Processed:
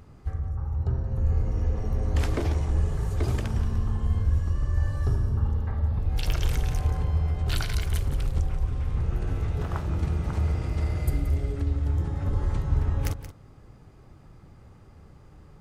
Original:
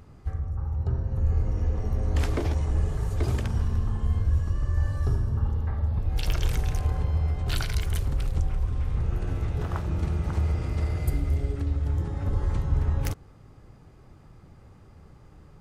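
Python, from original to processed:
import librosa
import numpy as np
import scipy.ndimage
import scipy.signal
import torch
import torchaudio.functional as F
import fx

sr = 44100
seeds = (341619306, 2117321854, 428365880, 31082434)

y = x + 10.0 ** (-12.5 / 20.0) * np.pad(x, (int(177 * sr / 1000.0), 0))[:len(x)]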